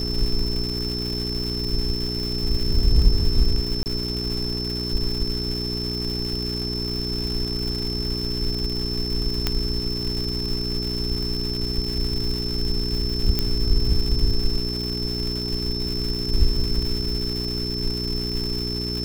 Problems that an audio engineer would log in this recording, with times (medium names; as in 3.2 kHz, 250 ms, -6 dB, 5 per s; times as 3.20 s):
crackle 410 per s -28 dBFS
hum 60 Hz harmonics 7 -29 dBFS
whine 5.3 kHz -28 dBFS
3.83–3.86 s: dropout 29 ms
9.47 s: pop -6 dBFS
13.39 s: pop -7 dBFS